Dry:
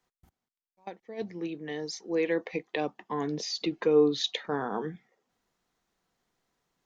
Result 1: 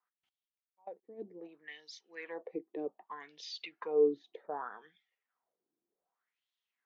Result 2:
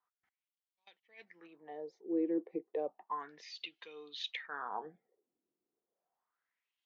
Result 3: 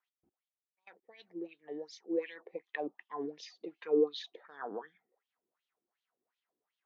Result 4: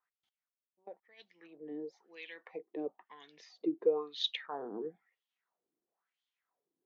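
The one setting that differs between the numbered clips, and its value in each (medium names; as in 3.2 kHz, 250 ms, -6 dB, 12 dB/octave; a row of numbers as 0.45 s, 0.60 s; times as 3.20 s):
wah-wah, rate: 0.65 Hz, 0.32 Hz, 2.7 Hz, 1 Hz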